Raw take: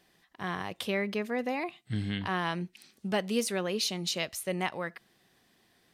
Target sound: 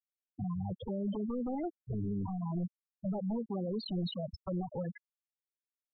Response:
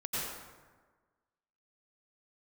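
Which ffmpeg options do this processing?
-filter_complex "[0:a]tiltshelf=frequency=1500:gain=5.5,aeval=exprs='val(0)+0.000794*(sin(2*PI*60*n/s)+sin(2*PI*2*60*n/s)/2+sin(2*PI*3*60*n/s)/3+sin(2*PI*4*60*n/s)/4+sin(2*PI*5*60*n/s)/5)':channel_layout=same,highshelf=frequency=8800:gain=7.5,acompressor=threshold=-28dB:ratio=16,acrusher=bits=3:mode=log:mix=0:aa=0.000001,acrossover=split=170|3100[link_01][link_02][link_03];[link_01]acompressor=threshold=-50dB:ratio=4[link_04];[link_02]acompressor=threshold=-45dB:ratio=4[link_05];[link_03]acompressor=threshold=-54dB:ratio=4[link_06];[link_04][link_05][link_06]amix=inputs=3:normalize=0,asplit=2[link_07][link_08];[1:a]atrim=start_sample=2205,afade=type=out:start_time=0.38:duration=0.01,atrim=end_sample=17199,asetrate=43218,aresample=44100[link_09];[link_08][link_09]afir=irnorm=-1:irlink=0,volume=-28dB[link_10];[link_07][link_10]amix=inputs=2:normalize=0,aeval=exprs='0.0473*sin(PI/2*4.47*val(0)/0.0473)':channel_layout=same,asplit=2[link_11][link_12];[link_12]adelay=285.7,volume=-22dB,highshelf=frequency=4000:gain=-6.43[link_13];[link_11][link_13]amix=inputs=2:normalize=0,afftfilt=real='re*gte(hypot(re,im),0.0891)':imag='im*gte(hypot(re,im),0.0891)':win_size=1024:overlap=0.75,volume=-3.5dB"

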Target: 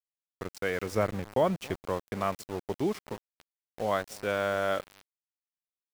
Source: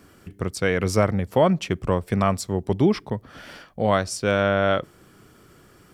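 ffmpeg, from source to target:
ffmpeg -i in.wav -filter_complex "[0:a]bass=frequency=250:gain=-9,treble=frequency=4000:gain=-5,asplit=2[link_01][link_02];[link_02]adelay=279,lowpass=frequency=910:poles=1,volume=-18dB,asplit=2[link_03][link_04];[link_04]adelay=279,lowpass=frequency=910:poles=1,volume=0.16[link_05];[link_01][link_03][link_05]amix=inputs=3:normalize=0,aeval=exprs='val(0)*gte(abs(val(0)),0.0282)':channel_layout=same,asettb=1/sr,asplit=3[link_06][link_07][link_08];[link_06]atrim=end=0.924[link_09];[link_07]atrim=start=0.92:end=1.79,asetpts=PTS-STARTPTS,afade=type=in:duration=0.004:curve=qsin,afade=type=out:start_time=0.866:duration=0.004:curve=qsin,lowshelf=frequency=240:gain=6[link_10];[link_08]atrim=start=1.786[link_11];[link_09][link_10]acrossfade=duration=0.004:curve1=hsin:curve2=qsin[link_12];[link_12][link_11]acrossfade=duration=0.004:curve1=qsin:curve2=hsin,volume=-7.5dB" out.wav

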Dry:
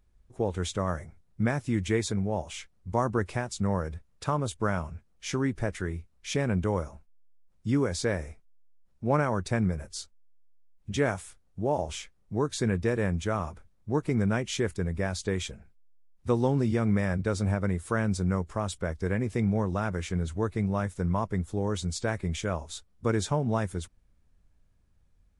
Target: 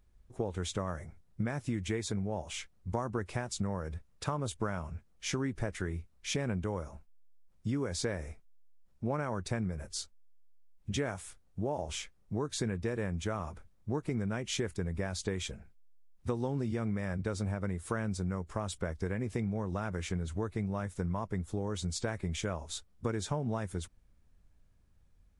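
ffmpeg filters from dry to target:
ffmpeg -i in.wav -af "acompressor=threshold=-30dB:ratio=6" out.wav

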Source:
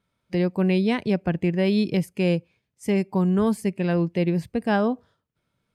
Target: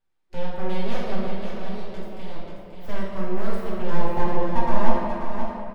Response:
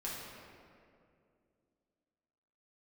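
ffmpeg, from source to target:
-filter_complex "[0:a]asettb=1/sr,asplit=3[link_01][link_02][link_03];[link_01]atrim=end=1.244[link_04];[link_02]atrim=start=1.24:end=2.36,asetpts=PTS-STARTPTS,afade=type=in:duration=0.004:curve=qsin,afade=type=out:start_time=1.116:duration=0.004:curve=qsin,acompressor=threshold=-28dB:ratio=6[link_05];[link_03]atrim=start=2.356[link_06];[link_04][link_05]acrossfade=duration=0.004:curve1=hsin:curve2=qsin[link_07];[link_07][link_06]acrossfade=duration=0.004:curve1=qsin:curve2=hsin,asettb=1/sr,asplit=3[link_08][link_09][link_10];[link_08]atrim=end=3.904[link_11];[link_09]atrim=start=3.9:end=4.89,asetpts=PTS-STARTPTS,afade=type=in:duration=0.004:curve=qsin,afade=type=out:start_time=0.986:duration=0.004:curve=qsin,lowpass=frequency=470:width_type=q:width=5.5[link_12];[link_10]atrim=start=4.886[link_13];[link_11][link_12]acrossfade=duration=0.004:curve1=hsin:curve2=qsin[link_14];[link_14][link_13]acrossfade=duration=0.004:curve1=qsin:curve2=hsin,aeval=exprs='abs(val(0))':channel_layout=same,aecho=1:1:535:0.447[link_15];[1:a]atrim=start_sample=2205[link_16];[link_15][link_16]afir=irnorm=-1:irlink=0,volume=-5.5dB"

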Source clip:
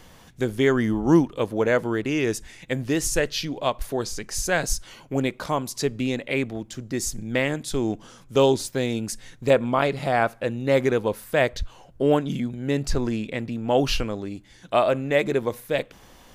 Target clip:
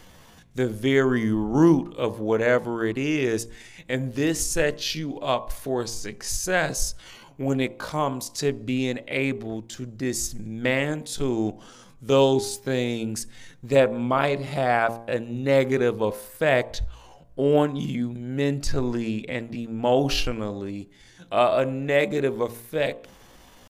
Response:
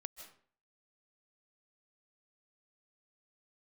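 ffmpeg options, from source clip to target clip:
-af "atempo=0.69,bandreject=frequency=57.76:width_type=h:width=4,bandreject=frequency=115.52:width_type=h:width=4,bandreject=frequency=173.28:width_type=h:width=4,bandreject=frequency=231.04:width_type=h:width=4,bandreject=frequency=288.8:width_type=h:width=4,bandreject=frequency=346.56:width_type=h:width=4,bandreject=frequency=404.32:width_type=h:width=4,bandreject=frequency=462.08:width_type=h:width=4,bandreject=frequency=519.84:width_type=h:width=4,bandreject=frequency=577.6:width_type=h:width=4,bandreject=frequency=635.36:width_type=h:width=4,bandreject=frequency=693.12:width_type=h:width=4,bandreject=frequency=750.88:width_type=h:width=4,bandreject=frequency=808.64:width_type=h:width=4,bandreject=frequency=866.4:width_type=h:width=4,bandreject=frequency=924.16:width_type=h:width=4,bandreject=frequency=981.92:width_type=h:width=4,bandreject=frequency=1039.68:width_type=h:width=4,bandreject=frequency=1097.44:width_type=h:width=4,bandreject=frequency=1155.2:width_type=h:width=4"

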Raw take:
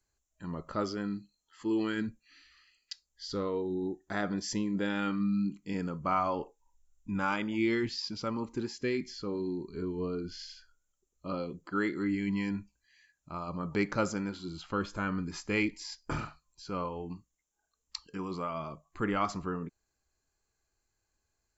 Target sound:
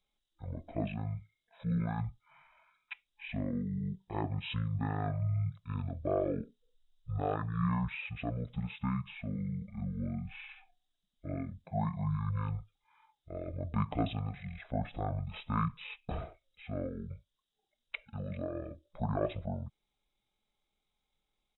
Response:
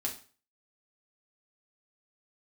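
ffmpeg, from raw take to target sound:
-af "asetrate=22696,aresample=44100,atempo=1.94306,volume=-2dB"

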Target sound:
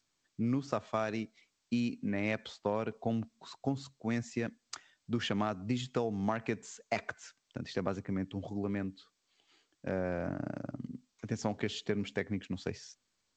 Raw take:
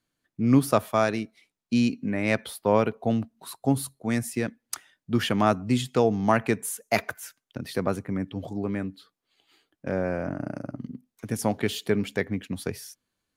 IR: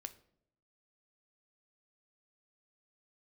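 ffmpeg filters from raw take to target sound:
-filter_complex "[0:a]asettb=1/sr,asplit=3[link_01][link_02][link_03];[link_01]atrim=end=9.984[link_04];[link_02]atrim=start=9.98:end=12.17,asetpts=PTS-STARTPTS,afade=type=in:duration=0.004:curve=qsin,afade=type=out:start_time=2.186:duration=0.004:curve=qsin,lowshelf=frequency=73:gain=3[link_05];[link_03]atrim=start=12.166[link_06];[link_04][link_05]acrossfade=duration=0.004:curve1=hsin:curve2=qsin[link_07];[link_07][link_06]acrossfade=duration=0.004:curve1=qsin:curve2=hsin,acompressor=threshold=-22dB:ratio=16,volume=-5.5dB" -ar 16000 -c:a g722

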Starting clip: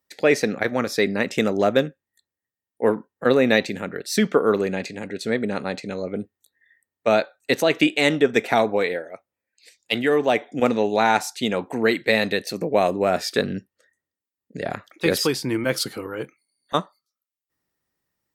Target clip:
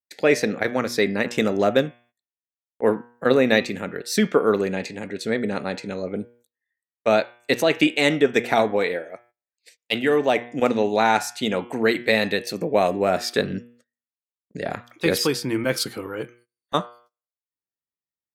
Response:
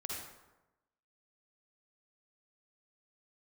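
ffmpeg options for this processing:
-af "bandreject=frequency=119.7:width_type=h:width=4,bandreject=frequency=239.4:width_type=h:width=4,bandreject=frequency=359.1:width_type=h:width=4,bandreject=frequency=478.8:width_type=h:width=4,bandreject=frequency=598.5:width_type=h:width=4,bandreject=frequency=718.2:width_type=h:width=4,bandreject=frequency=837.9:width_type=h:width=4,bandreject=frequency=957.6:width_type=h:width=4,bandreject=frequency=1077.3:width_type=h:width=4,bandreject=frequency=1197:width_type=h:width=4,bandreject=frequency=1316.7:width_type=h:width=4,bandreject=frequency=1436.4:width_type=h:width=4,bandreject=frequency=1556.1:width_type=h:width=4,bandreject=frequency=1675.8:width_type=h:width=4,bandreject=frequency=1795.5:width_type=h:width=4,bandreject=frequency=1915.2:width_type=h:width=4,bandreject=frequency=2034.9:width_type=h:width=4,bandreject=frequency=2154.6:width_type=h:width=4,bandreject=frequency=2274.3:width_type=h:width=4,bandreject=frequency=2394:width_type=h:width=4,bandreject=frequency=2513.7:width_type=h:width=4,bandreject=frequency=2633.4:width_type=h:width=4,bandreject=frequency=2753.1:width_type=h:width=4,bandreject=frequency=2872.8:width_type=h:width=4,bandreject=frequency=2992.5:width_type=h:width=4,bandreject=frequency=3112.2:width_type=h:width=4,bandreject=frequency=3231.9:width_type=h:width=4,bandreject=frequency=3351.6:width_type=h:width=4,bandreject=frequency=3471.3:width_type=h:width=4,agate=range=-22dB:threshold=-52dB:ratio=16:detection=peak"

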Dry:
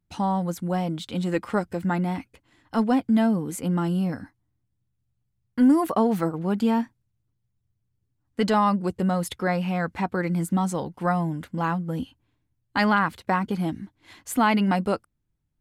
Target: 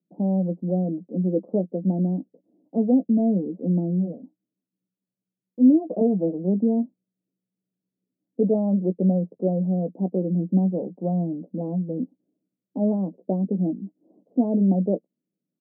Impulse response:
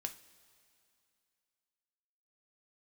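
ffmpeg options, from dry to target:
-filter_complex "[0:a]asettb=1/sr,asplit=3[link_01][link_02][link_03];[link_01]atrim=end=3.904[link_04];[link_02]atrim=start=3.9:end=6.01,asetpts=PTS-STARTPTS,afade=type=in:duration=0.004:curve=qsin,afade=type=out:start_time=2.106:duration=0.004:curve=qsin,flanger=delay=0:depth=9.7:regen=-17:speed=1.1:shape=sinusoidal[link_05];[link_03]atrim=start=6.006[link_06];[link_04][link_05]acrossfade=duration=0.004:curve1=hsin:curve2=qsin[link_07];[link_07][link_06]acrossfade=duration=0.004:curve1=qsin:curve2=hsin,asuperpass=centerf=330:order=12:qfactor=0.7,asplit=2[link_08][link_09];[link_09]adelay=16,volume=-10dB[link_10];[link_08][link_10]amix=inputs=2:normalize=0,volume=2.5dB"

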